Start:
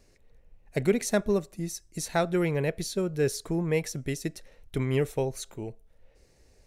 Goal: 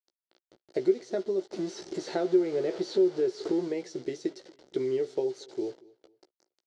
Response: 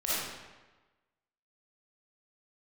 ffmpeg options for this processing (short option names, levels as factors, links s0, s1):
-filter_complex "[0:a]asettb=1/sr,asplit=3[s0][s1][s2];[s0]atrim=end=1.514[s3];[s1]atrim=start=1.51:end=3.68,asetpts=PTS-STARTPTS,afade=t=in:d=0.004:c=qsin,afade=t=out:st=2.166:d=0.004:c=qsin,aeval=exprs='val(0)+0.5*0.0376*sgn(val(0))':c=same[s4];[s2]atrim=start=3.676[s5];[s3][s4]acrossfade=d=0.004:c1=hsin:c2=qsin[s6];[s6][s5]acrossfade=d=0.004:c1=qsin:c2=hsin,acrossover=split=2700[s7][s8];[s8]acompressor=threshold=0.01:ratio=4:attack=1:release=60[s9];[s7][s9]amix=inputs=2:normalize=0,equalizer=f=380:t=o:w=0.31:g=10.5,acompressor=threshold=0.0501:ratio=4,acrusher=bits=7:mix=0:aa=0.000001,highpass=300,equalizer=f=350:t=q:w=4:g=8,equalizer=f=540:t=q:w=4:g=3,equalizer=f=1100:t=q:w=4:g=-9,equalizer=f=1700:t=q:w=4:g=-5,equalizer=f=2500:t=q:w=4:g=-9,equalizer=f=4500:t=q:w=4:g=4,lowpass=f=6100:w=0.5412,lowpass=f=6100:w=1.3066,asplit=2[s10][s11];[s11]adelay=16,volume=0.447[s12];[s10][s12]amix=inputs=2:normalize=0,asplit=2[s13][s14];[s14]adelay=232,lowpass=f=4800:p=1,volume=0.0668,asplit=2[s15][s16];[s16]adelay=232,lowpass=f=4800:p=1,volume=0.34[s17];[s13][s15][s17]amix=inputs=3:normalize=0,volume=0.794"